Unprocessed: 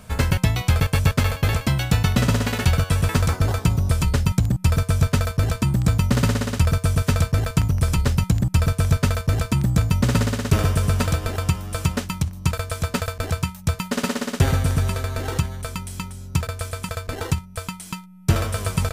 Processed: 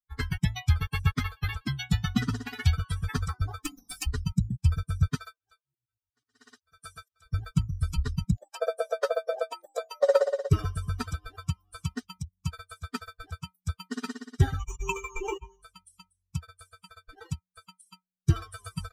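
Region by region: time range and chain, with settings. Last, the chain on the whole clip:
3.64–4.07 s: comb filter that takes the minimum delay 3.9 ms + tilt EQ +1.5 dB/octave + hum notches 50/100/150/200/250/300/350/400/450 Hz
5.15–7.26 s: bass shelf 260 Hz -9.5 dB + slow attack 264 ms
8.36–10.51 s: resonant high-pass 550 Hz, resonance Q 6.6 + doubling 20 ms -12 dB
14.59–15.63 s: rippled EQ curve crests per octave 0.73, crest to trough 15 dB + compressor with a negative ratio -21 dBFS, ratio -0.5
whole clip: expander on every frequency bin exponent 3; treble shelf 9.7 kHz -9 dB

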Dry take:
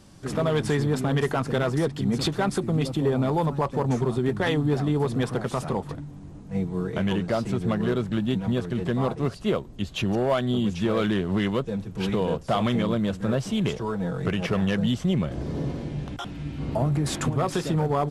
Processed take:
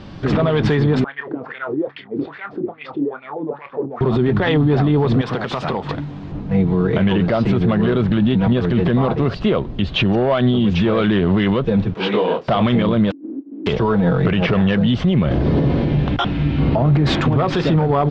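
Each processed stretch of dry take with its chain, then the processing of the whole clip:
1.04–4.01 s: compressor with a negative ratio -28 dBFS + wah-wah 2.4 Hz 300–2300 Hz, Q 6.6 + doubling 28 ms -11 dB
5.21–6.32 s: tilt EQ +2 dB/octave + compression 12:1, threshold -32 dBFS
11.94–12.48 s: high-pass 330 Hz + detune thickener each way 42 cents
13.10–13.66 s: spectral contrast reduction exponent 0.2 + Butterworth band-pass 290 Hz, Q 5.6
whole clip: low-pass 3.9 kHz 24 dB/octave; loudness maximiser +23 dB; trim -7.5 dB

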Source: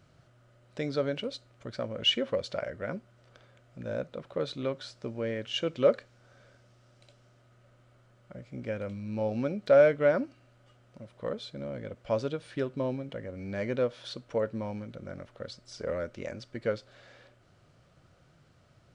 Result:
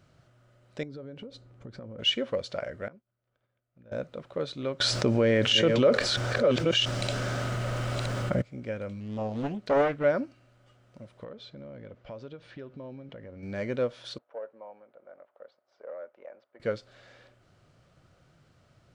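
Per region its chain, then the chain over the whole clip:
0.83–1.99 s: tilt shelf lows +7.5 dB, about 1.1 kHz + band-stop 630 Hz, Q 5.3 + compression 16:1, threshold -38 dBFS
2.88–3.92 s: compression 3:1, threshold -52 dBFS + distance through air 180 m + expander -48 dBFS
4.80–8.42 s: chunks repeated in reverse 685 ms, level -7 dB + level flattener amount 70%
9.00–10.04 s: dynamic bell 680 Hz, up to -5 dB, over -32 dBFS, Q 1 + loudspeaker Doppler distortion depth 0.72 ms
11.24–13.43 s: distance through air 130 m + compression 3:1, threshold -42 dBFS
14.18–16.60 s: waveshaping leveller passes 1 + ladder band-pass 810 Hz, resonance 35%
whole clip: none

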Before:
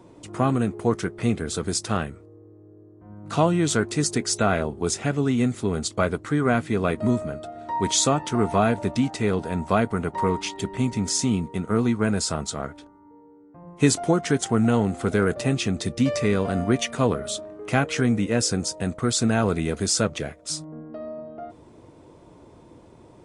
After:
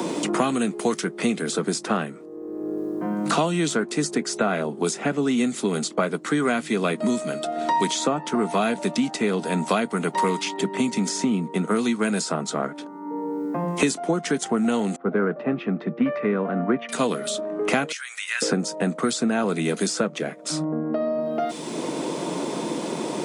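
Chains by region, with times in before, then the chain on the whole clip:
14.96–16.89 s: low-pass 1.3 kHz 24 dB/octave + three bands expanded up and down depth 100%
17.92–18.42 s: high-pass 1.5 kHz 24 dB/octave + tilt EQ +1.5 dB/octave + compression 2:1, threshold -40 dBFS
whole clip: steep high-pass 160 Hz 48 dB/octave; three bands compressed up and down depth 100%

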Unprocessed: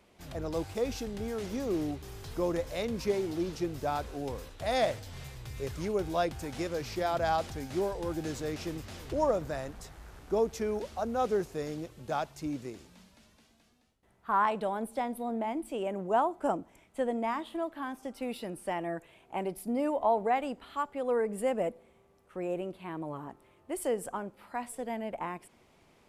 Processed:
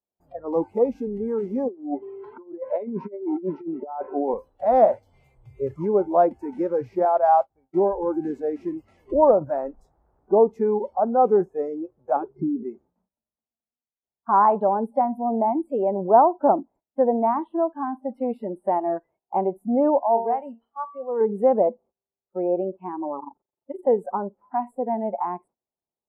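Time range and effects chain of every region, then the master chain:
1.68–4.34 s: band-pass 190–2800 Hz + compressor with a negative ratio -37 dBFS, ratio -0.5
7.05–7.74 s: expander -30 dBFS + peaking EQ 140 Hz -5 dB 2 oct
12.16–12.63 s: low-pass 3.3 kHz + resonant low shelf 530 Hz +8 dB, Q 3 + compression 8:1, threshold -31 dBFS
19.99–21.21 s: treble shelf 2.7 kHz +9.5 dB + feedback comb 230 Hz, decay 0.58 s, mix 70%
23.19–23.87 s: hum notches 60/120/180/240/300/360/420 Hz + AM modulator 23 Hz, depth 90% + three bands compressed up and down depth 70%
whole clip: gate -55 dBFS, range -19 dB; FFT filter 110 Hz 0 dB, 850 Hz +7 dB, 3.6 kHz -30 dB; spectral noise reduction 24 dB; trim +6.5 dB

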